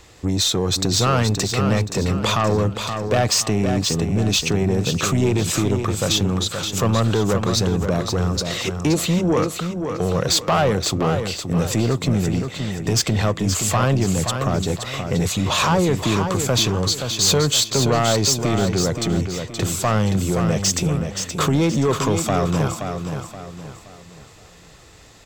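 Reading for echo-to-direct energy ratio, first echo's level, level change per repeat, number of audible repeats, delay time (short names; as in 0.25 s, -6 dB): -6.5 dB, -7.0 dB, -8.5 dB, 4, 0.524 s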